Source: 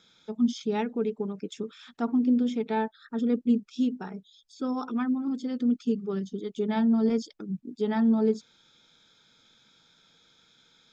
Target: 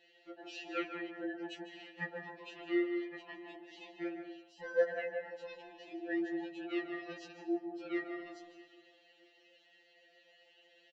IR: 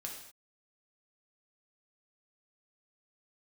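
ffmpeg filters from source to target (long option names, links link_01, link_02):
-filter_complex "[0:a]aeval=exprs='val(0)*sin(2*PI*530*n/s)':channel_layout=same,asplit=3[link_01][link_02][link_03];[link_01]bandpass=frequency=530:width_type=q:width=8,volume=0dB[link_04];[link_02]bandpass=frequency=1840:width_type=q:width=8,volume=-6dB[link_05];[link_03]bandpass=frequency=2480:width_type=q:width=8,volume=-9dB[link_06];[link_04][link_05][link_06]amix=inputs=3:normalize=0,asplit=2[link_07][link_08];[link_08]adelay=643,lowpass=frequency=1200:poles=1,volume=-20dB,asplit=2[link_09][link_10];[link_10]adelay=643,lowpass=frequency=1200:poles=1,volume=0.29[link_11];[link_07][link_09][link_11]amix=inputs=3:normalize=0,asplit=2[link_12][link_13];[1:a]atrim=start_sample=2205,highshelf=frequency=4200:gain=-11,adelay=149[link_14];[link_13][link_14]afir=irnorm=-1:irlink=0,volume=-3dB[link_15];[link_12][link_15]amix=inputs=2:normalize=0,afftfilt=real='re*2.83*eq(mod(b,8),0)':imag='im*2.83*eq(mod(b,8),0)':win_size=2048:overlap=0.75,volume=15.5dB"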